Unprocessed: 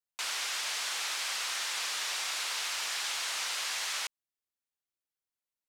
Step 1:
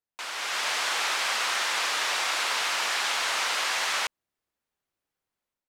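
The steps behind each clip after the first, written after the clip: high shelf 2600 Hz -12 dB; AGC gain up to 9 dB; gain +4.5 dB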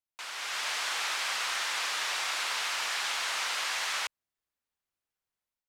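bell 320 Hz -5.5 dB 2.7 oct; gain -4 dB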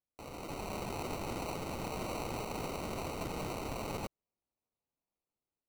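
sample-and-hold 26×; gain -6.5 dB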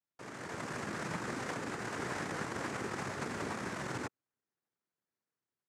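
downsampling 8000 Hz; noise vocoder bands 3; gain +1 dB

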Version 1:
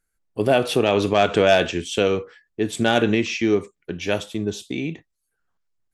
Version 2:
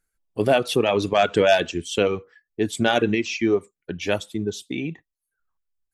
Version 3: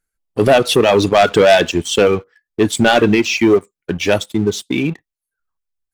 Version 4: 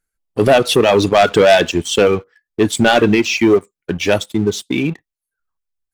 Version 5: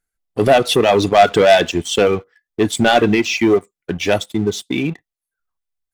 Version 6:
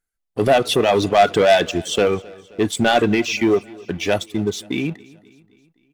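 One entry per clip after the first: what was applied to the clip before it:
reverb removal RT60 1.3 s
sample leveller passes 2; gain +3 dB
nothing audible
small resonant body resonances 720/2000/3500 Hz, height 6 dB; gain -2 dB
feedback echo 0.263 s, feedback 54%, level -23 dB; gain -3 dB

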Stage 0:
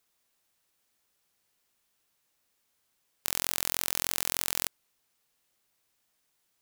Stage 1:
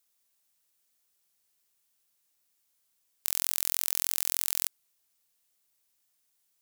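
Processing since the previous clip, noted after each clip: high shelf 4100 Hz +11 dB; gain -8 dB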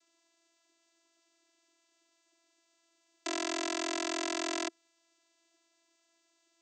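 vocoder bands 16, saw 334 Hz; gain +4 dB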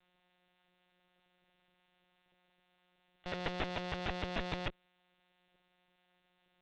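monotone LPC vocoder at 8 kHz 180 Hz; tube stage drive 26 dB, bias 0.65; gain +5.5 dB

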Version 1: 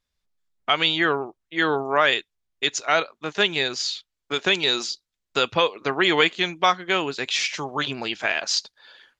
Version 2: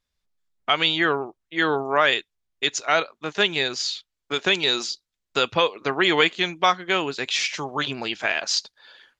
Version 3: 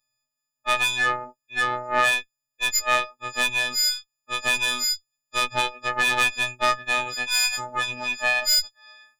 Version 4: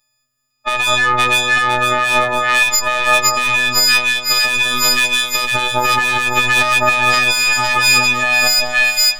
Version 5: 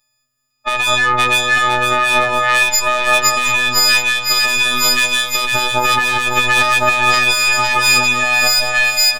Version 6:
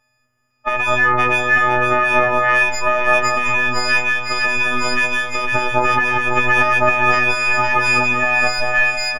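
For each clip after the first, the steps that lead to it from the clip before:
nothing audible
frequency quantiser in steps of 6 st; tube stage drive 13 dB, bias 0.7; robotiser 124 Hz
split-band echo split 1300 Hz, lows 0.194 s, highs 0.505 s, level -3.5 dB; maximiser +13 dB; gain -1 dB
echo 0.721 s -11.5 dB
G.711 law mismatch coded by mu; running mean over 11 samples; doubler 19 ms -13 dB; gain +1.5 dB

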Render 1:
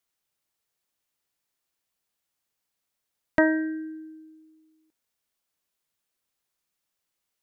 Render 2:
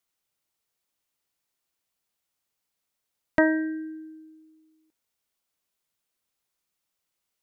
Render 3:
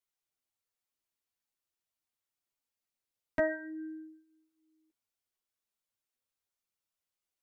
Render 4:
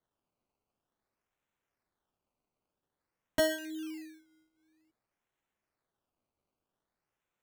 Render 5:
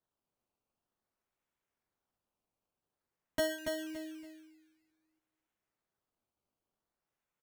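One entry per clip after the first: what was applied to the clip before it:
notch 1700 Hz, Q 23
chorus voices 4, 0.35 Hz, delay 10 ms, depth 2 ms; gain -6.5 dB
decimation with a swept rate 17×, swing 100% 0.51 Hz; gain +1.5 dB
feedback echo 0.283 s, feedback 26%, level -5 dB; gain -4.5 dB

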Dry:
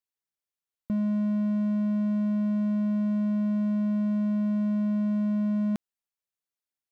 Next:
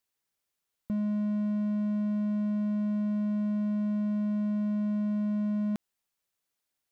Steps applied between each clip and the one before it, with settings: limiter -32 dBFS, peak gain reduction 11 dB; gain +8 dB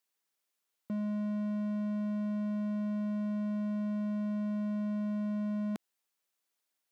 Bessel high-pass 260 Hz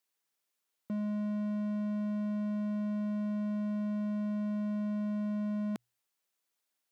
notches 60/120 Hz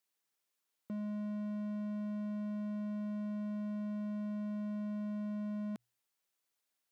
limiter -34 dBFS, peak gain reduction 7.5 dB; gain -1.5 dB

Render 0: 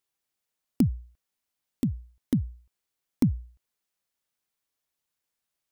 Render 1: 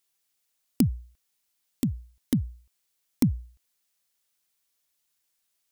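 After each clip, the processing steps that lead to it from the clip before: high shelf 2200 Hz +9.5 dB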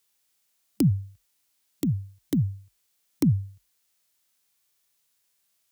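frequency shift +38 Hz; harmonic-percussive split percussive -9 dB; gain +7.5 dB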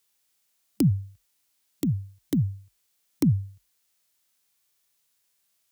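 nothing audible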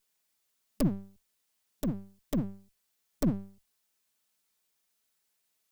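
minimum comb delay 4.6 ms; gain -4 dB

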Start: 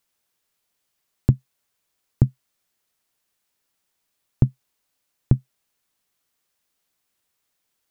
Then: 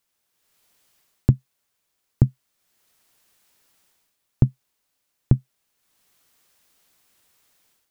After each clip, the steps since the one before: AGC gain up to 12.5 dB; gain -1 dB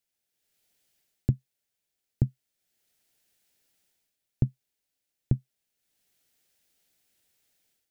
bell 1100 Hz -13 dB 0.5 oct; gain -8 dB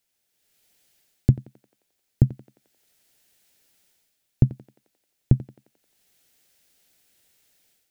thinning echo 88 ms, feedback 66%, high-pass 350 Hz, level -12.5 dB; gain +7.5 dB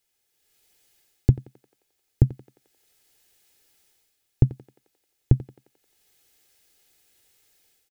comb 2.4 ms, depth 44%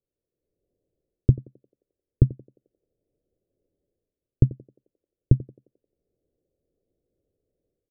elliptic low-pass 600 Hz, stop band 40 dB; gain +1 dB

